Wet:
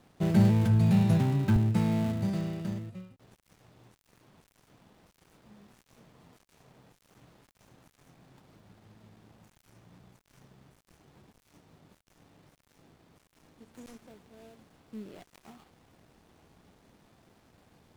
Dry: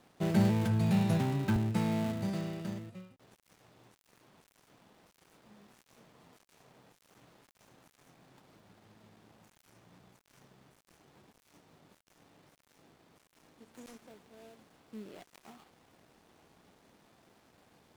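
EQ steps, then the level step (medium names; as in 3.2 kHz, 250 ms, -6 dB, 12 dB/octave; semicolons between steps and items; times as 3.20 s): bass shelf 160 Hz +10.5 dB; 0.0 dB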